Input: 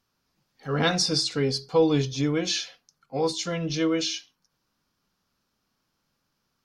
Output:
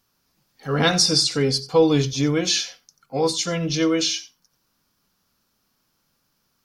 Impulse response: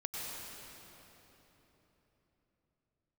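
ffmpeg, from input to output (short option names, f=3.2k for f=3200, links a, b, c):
-filter_complex "[0:a]highshelf=f=8.7k:g=11[a];[1:a]atrim=start_sample=2205,atrim=end_sample=3969[b];[a][b]afir=irnorm=-1:irlink=0,volume=7.5dB"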